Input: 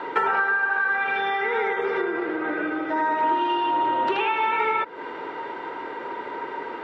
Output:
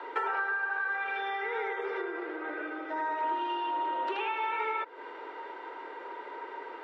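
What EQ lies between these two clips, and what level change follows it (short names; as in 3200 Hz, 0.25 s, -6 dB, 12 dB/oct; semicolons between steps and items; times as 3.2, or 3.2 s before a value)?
HPF 330 Hz 24 dB/oct; -9.0 dB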